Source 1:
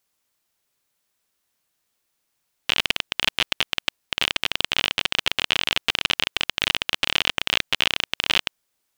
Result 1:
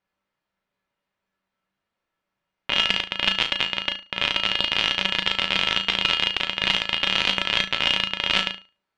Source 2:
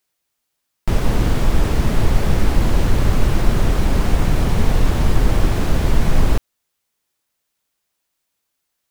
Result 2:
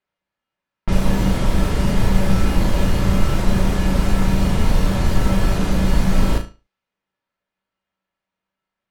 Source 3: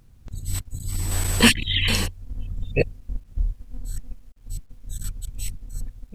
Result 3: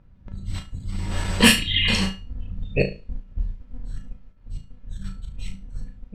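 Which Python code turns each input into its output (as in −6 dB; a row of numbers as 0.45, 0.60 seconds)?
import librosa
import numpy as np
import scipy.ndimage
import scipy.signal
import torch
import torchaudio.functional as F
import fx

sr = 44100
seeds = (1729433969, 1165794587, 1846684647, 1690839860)

y = fx.comb_fb(x, sr, f0_hz=190.0, decay_s=0.3, harmonics='odd', damping=0.0, mix_pct=80)
y = fx.room_flutter(y, sr, wall_m=6.2, rt60_s=0.31)
y = fx.env_lowpass(y, sr, base_hz=2100.0, full_db=-22.0)
y = librosa.util.normalize(y) * 10.0 ** (-1.5 / 20.0)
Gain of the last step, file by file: +12.0, +10.5, +12.0 decibels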